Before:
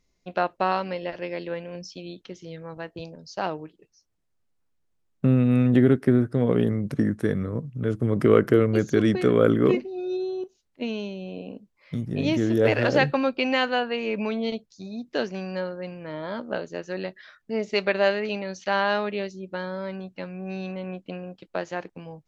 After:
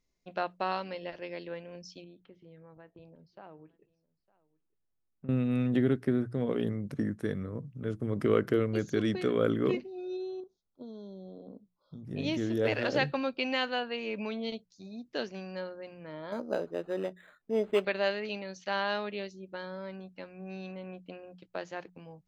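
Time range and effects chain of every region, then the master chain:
0:02.04–0:05.29: downward compressor 2 to 1, threshold −43 dBFS + high-frequency loss of the air 430 metres + single-tap delay 907 ms −23.5 dB
0:10.40–0:12.05: high-frequency loss of the air 170 metres + downward compressor 4 to 1, threshold −32 dBFS + linear-phase brick-wall band-stop 1,500–3,200 Hz
0:16.32–0:17.85: parametric band 430 Hz +8 dB 2.1 octaves + linearly interpolated sample-rate reduction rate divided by 8×
whole clip: mains-hum notches 60/120/180 Hz; dynamic equaliser 3,800 Hz, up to +5 dB, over −44 dBFS, Q 1.2; level −8.5 dB

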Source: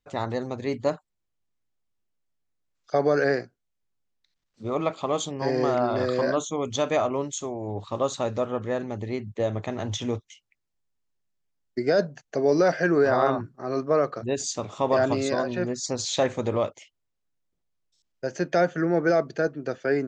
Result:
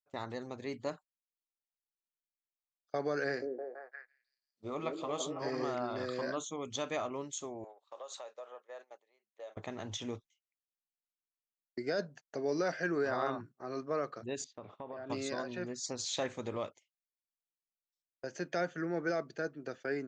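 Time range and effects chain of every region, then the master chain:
0:03.25–0:05.64: double-tracking delay 20 ms −12 dB + echo through a band-pass that steps 166 ms, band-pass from 360 Hz, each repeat 0.7 octaves, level 0 dB
0:07.64–0:09.57: downward compressor, threshold −31 dBFS + Chebyshev high-pass filter 540 Hz, order 3
0:14.44–0:15.10: downward compressor 4 to 1, threshold −31 dBFS + high-frequency loss of the air 350 metres
whole clip: dynamic equaliser 630 Hz, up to −5 dB, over −33 dBFS, Q 0.91; noise gate −41 dBFS, range −20 dB; low-shelf EQ 160 Hz −10 dB; level −8 dB

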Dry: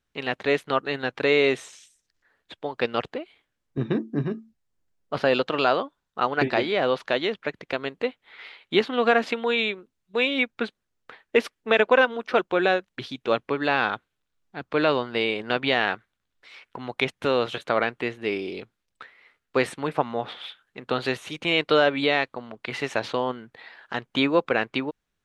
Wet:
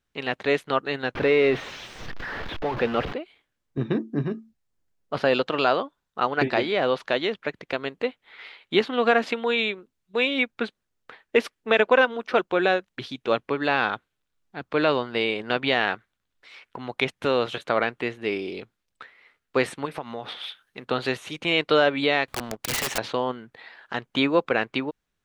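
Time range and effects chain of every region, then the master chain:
0:01.15–0:03.13: converter with a step at zero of −24 dBFS + high-frequency loss of the air 310 metres
0:19.85–0:20.85: high-shelf EQ 3,900 Hz +8.5 dB + notch filter 7,300 Hz, Q 6.6 + downward compressor 3 to 1, threshold −30 dBFS
0:22.28–0:22.98: upward compression, threshold −40 dBFS + leveller curve on the samples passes 2 + wrap-around overflow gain 20 dB
whole clip: no processing

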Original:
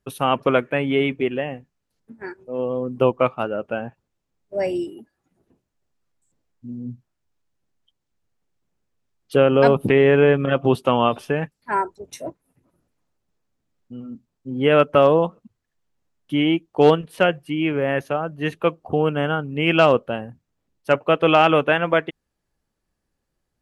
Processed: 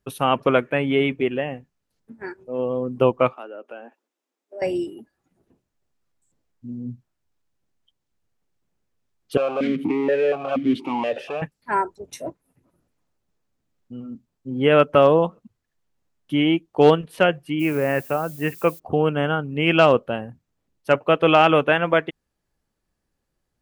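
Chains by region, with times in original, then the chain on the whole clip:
0:03.33–0:04.62: Butterworth high-pass 250 Hz 48 dB per octave + notch filter 4,400 Hz, Q 22 + downward compressor 2 to 1, threshold −42 dBFS
0:09.37–0:11.42: power curve on the samples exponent 0.5 + formant filter that steps through the vowels 4.2 Hz
0:17.59–0:18.78: Butterworth low-pass 2,900 Hz 96 dB per octave + background noise violet −43 dBFS
whole clip: no processing

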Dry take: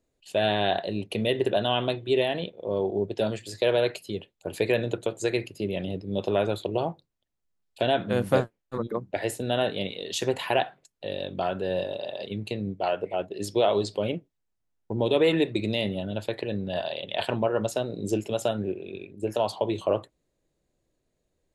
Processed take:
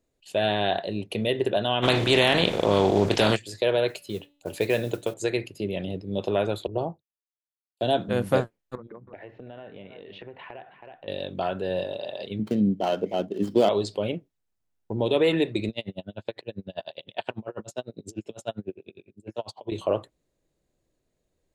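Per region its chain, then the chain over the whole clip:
0:01.82–0:03.35: compressing power law on the bin magnitudes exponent 0.54 + high-frequency loss of the air 58 metres + envelope flattener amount 70%
0:03.88–0:05.14: hum removal 288.1 Hz, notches 16 + noise that follows the level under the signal 24 dB
0:06.67–0:08.09: downward expander −47 dBFS + parametric band 2,100 Hz −13 dB 1.3 octaves + multiband upward and downward expander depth 100%
0:08.75–0:11.08: inverse Chebyshev low-pass filter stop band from 7,800 Hz, stop band 60 dB + single-tap delay 321 ms −19.5 dB + downward compressor 5 to 1, threshold −40 dBFS
0:12.39–0:13.69: running median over 15 samples + low-shelf EQ 150 Hz −6.5 dB + hollow resonant body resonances 220/3,100 Hz, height 15 dB, ringing for 30 ms
0:15.69–0:19.72: Chebyshev band-pass filter 110–7,500 Hz + tremolo with a sine in dB 10 Hz, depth 36 dB
whole clip: no processing

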